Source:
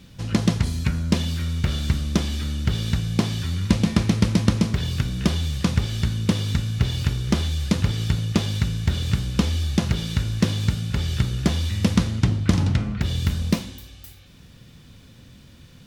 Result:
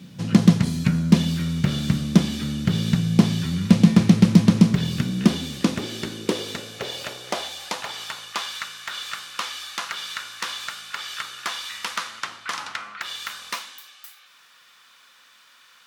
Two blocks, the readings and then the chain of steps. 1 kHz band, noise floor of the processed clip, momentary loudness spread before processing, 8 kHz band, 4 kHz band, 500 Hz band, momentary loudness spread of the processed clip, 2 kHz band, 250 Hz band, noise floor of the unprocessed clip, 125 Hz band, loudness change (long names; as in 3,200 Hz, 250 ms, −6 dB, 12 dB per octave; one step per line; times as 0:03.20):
+3.5 dB, −54 dBFS, 5 LU, +0.5 dB, +1.0 dB, +0.5 dB, 16 LU, +2.5 dB, +3.5 dB, −48 dBFS, −2.0 dB, +0.5 dB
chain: gain into a clipping stage and back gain 10 dB
high-pass filter sweep 170 Hz → 1,200 Hz, 0:04.78–0:08.53
level +1 dB